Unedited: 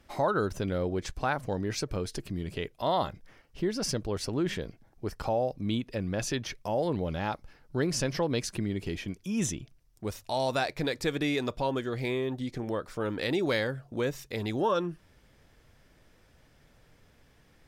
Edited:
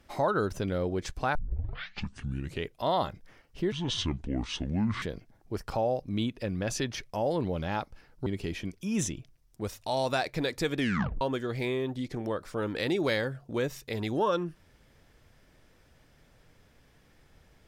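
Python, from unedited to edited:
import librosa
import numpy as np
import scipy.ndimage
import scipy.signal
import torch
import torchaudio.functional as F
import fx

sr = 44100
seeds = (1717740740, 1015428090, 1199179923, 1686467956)

y = fx.edit(x, sr, fx.tape_start(start_s=1.35, length_s=1.3),
    fx.speed_span(start_s=3.72, length_s=0.82, speed=0.63),
    fx.cut(start_s=7.78, length_s=0.91),
    fx.tape_stop(start_s=11.21, length_s=0.43), tone=tone)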